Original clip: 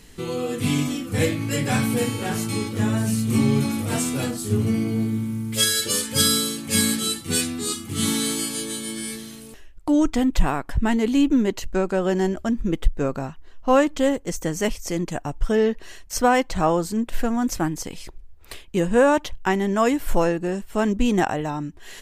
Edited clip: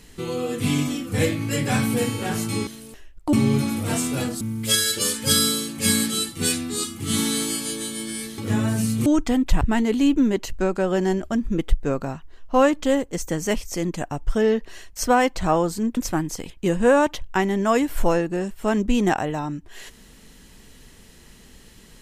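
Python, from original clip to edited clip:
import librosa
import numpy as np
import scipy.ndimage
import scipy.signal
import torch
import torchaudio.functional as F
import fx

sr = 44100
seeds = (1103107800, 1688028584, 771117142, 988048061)

y = fx.edit(x, sr, fx.swap(start_s=2.67, length_s=0.68, other_s=9.27, other_length_s=0.66),
    fx.cut(start_s=4.43, length_s=0.87),
    fx.cut(start_s=10.48, length_s=0.27),
    fx.cut(start_s=17.11, length_s=0.33),
    fx.cut(start_s=17.97, length_s=0.64), tone=tone)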